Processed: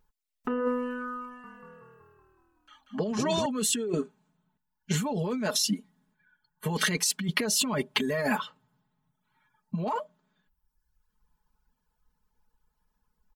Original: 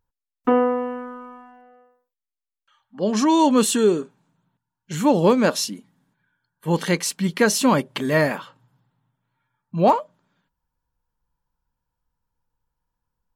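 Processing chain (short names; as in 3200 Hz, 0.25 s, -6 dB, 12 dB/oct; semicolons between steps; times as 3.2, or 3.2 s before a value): reverb removal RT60 0.93 s; comb 4.7 ms, depth 91%; limiter -16 dBFS, peak gain reduction 14 dB; negative-ratio compressor -28 dBFS, ratio -1; 1.25–3.46 frequency-shifting echo 0.187 s, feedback 60%, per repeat -39 Hz, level -5 dB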